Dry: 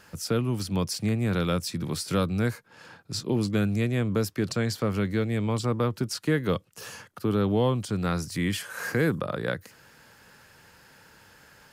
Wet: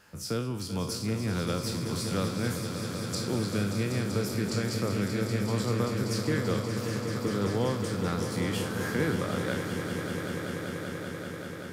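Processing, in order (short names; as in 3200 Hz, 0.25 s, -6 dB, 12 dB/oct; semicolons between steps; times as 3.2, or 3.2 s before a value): spectral trails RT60 0.44 s; 2.5–3.15 resonant high shelf 5200 Hz +9 dB, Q 1.5; swelling echo 0.193 s, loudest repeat 5, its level -10 dB; gain -6 dB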